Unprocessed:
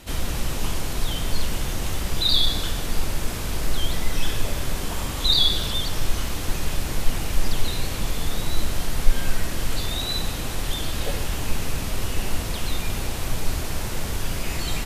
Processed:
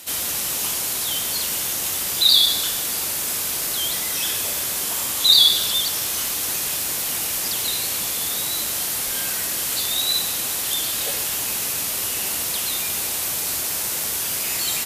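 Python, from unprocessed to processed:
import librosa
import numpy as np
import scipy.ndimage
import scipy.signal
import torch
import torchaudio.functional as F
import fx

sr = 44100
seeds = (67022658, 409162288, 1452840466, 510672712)

y = scipy.signal.sosfilt(scipy.signal.butter(2, 65.0, 'highpass', fs=sr, output='sos'), x)
y = fx.riaa(y, sr, side='recording')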